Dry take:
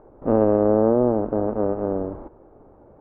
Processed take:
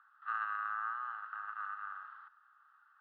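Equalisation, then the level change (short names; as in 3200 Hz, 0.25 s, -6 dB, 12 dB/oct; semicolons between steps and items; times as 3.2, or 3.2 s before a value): steep high-pass 1100 Hz 72 dB/oct; air absorption 84 m; fixed phaser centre 1500 Hz, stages 8; +8.0 dB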